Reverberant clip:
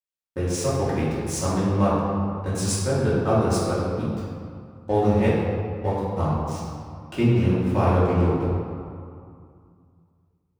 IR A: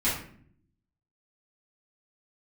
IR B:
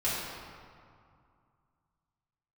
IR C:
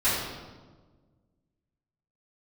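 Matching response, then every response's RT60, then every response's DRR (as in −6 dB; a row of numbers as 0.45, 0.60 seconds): B; 0.55, 2.3, 1.4 seconds; −11.0, −10.0, −16.0 decibels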